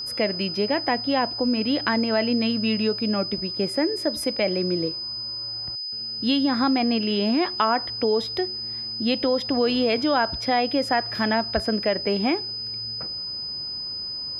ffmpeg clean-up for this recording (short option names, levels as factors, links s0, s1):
-af "bandreject=f=5000:w=30"